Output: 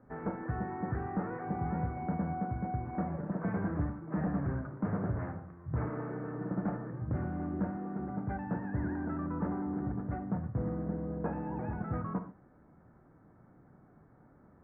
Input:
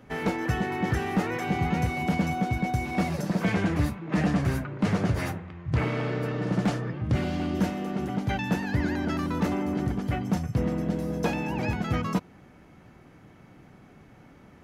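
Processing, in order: steep low-pass 1.6 kHz 36 dB/octave; reverberation, pre-delay 23 ms, DRR 8.5 dB; trim -8.5 dB

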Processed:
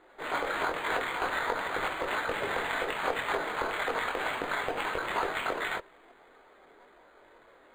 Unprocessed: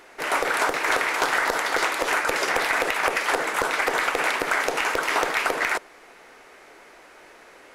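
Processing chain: level-controlled noise filter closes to 1.9 kHz; chorus voices 4, 0.39 Hz, delay 22 ms, depth 2.8 ms; decimation joined by straight lines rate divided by 8×; trim -3.5 dB

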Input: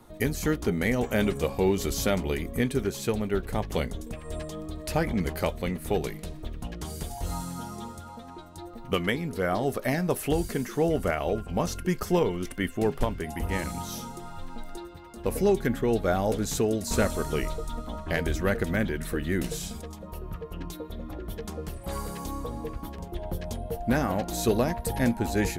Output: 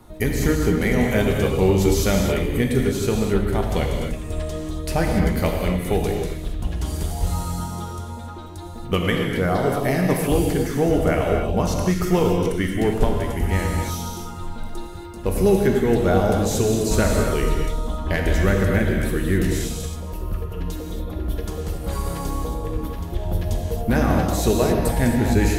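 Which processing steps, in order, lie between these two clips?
bass shelf 120 Hz +6.5 dB; gated-style reverb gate 300 ms flat, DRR 0.5 dB; trim +3 dB

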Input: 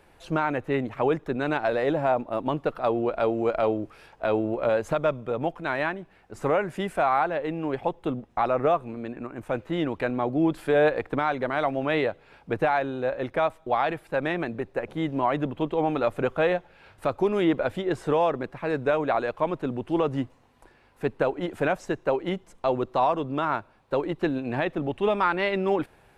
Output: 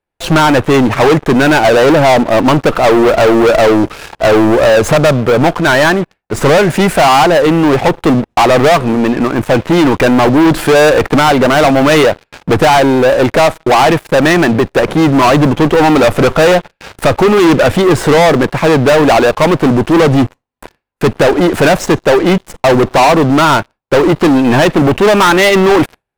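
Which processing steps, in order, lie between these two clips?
gate with hold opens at -43 dBFS; waveshaping leveller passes 5; trim +8 dB

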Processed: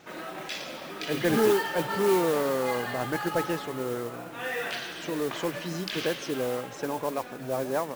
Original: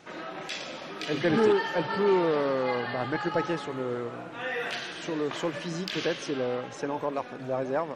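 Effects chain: modulation noise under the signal 16 dB

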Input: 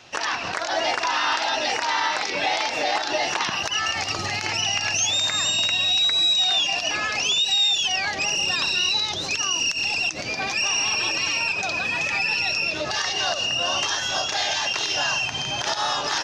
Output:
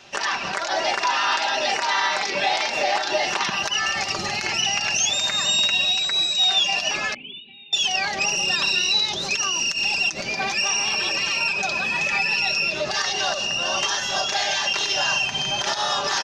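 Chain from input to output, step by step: 7.14–7.73 s: cascade formant filter i; comb 5.1 ms, depth 54%

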